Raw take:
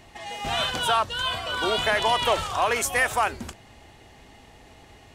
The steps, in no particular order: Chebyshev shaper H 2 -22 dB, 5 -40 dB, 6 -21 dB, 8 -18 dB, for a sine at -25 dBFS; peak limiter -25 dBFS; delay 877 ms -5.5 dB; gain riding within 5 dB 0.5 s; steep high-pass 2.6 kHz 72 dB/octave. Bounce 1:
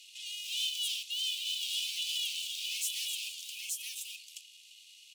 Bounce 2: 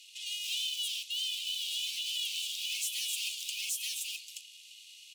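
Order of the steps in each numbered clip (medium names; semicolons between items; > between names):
delay > Chebyshev shaper > gain riding > peak limiter > steep high-pass; Chebyshev shaper > steep high-pass > peak limiter > delay > gain riding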